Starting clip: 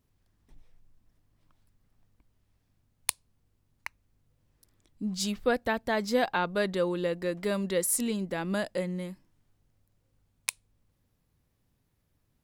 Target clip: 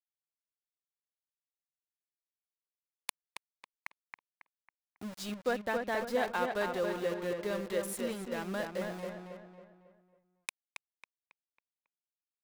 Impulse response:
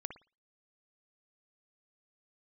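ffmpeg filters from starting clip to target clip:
-filter_complex "[0:a]bass=frequency=250:gain=-6,treble=frequency=4000:gain=-8,aeval=exprs='val(0)*gte(abs(val(0)),0.015)':channel_layout=same,asplit=2[link_01][link_02];[link_02]adelay=274,lowpass=frequency=3000:poles=1,volume=-4dB,asplit=2[link_03][link_04];[link_04]adelay=274,lowpass=frequency=3000:poles=1,volume=0.43,asplit=2[link_05][link_06];[link_06]adelay=274,lowpass=frequency=3000:poles=1,volume=0.43,asplit=2[link_07][link_08];[link_08]adelay=274,lowpass=frequency=3000:poles=1,volume=0.43,asplit=2[link_09][link_10];[link_10]adelay=274,lowpass=frequency=3000:poles=1,volume=0.43[link_11];[link_01][link_03][link_05][link_07][link_09][link_11]amix=inputs=6:normalize=0,volume=-5dB"

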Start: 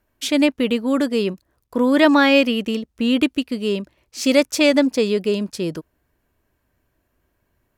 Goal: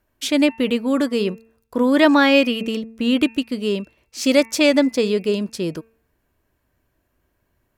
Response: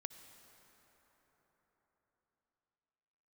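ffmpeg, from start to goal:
-af "bandreject=frequency=225.2:width_type=h:width=4,bandreject=frequency=450.4:width_type=h:width=4,bandreject=frequency=675.6:width_type=h:width=4,bandreject=frequency=900.8:width_type=h:width=4,bandreject=frequency=1126:width_type=h:width=4,bandreject=frequency=1351.2:width_type=h:width=4,bandreject=frequency=1576.4:width_type=h:width=4,bandreject=frequency=1801.6:width_type=h:width=4,bandreject=frequency=2026.8:width_type=h:width=4,bandreject=frequency=2252:width_type=h:width=4,bandreject=frequency=2477.2:width_type=h:width=4,bandreject=frequency=2702.4:width_type=h:width=4"

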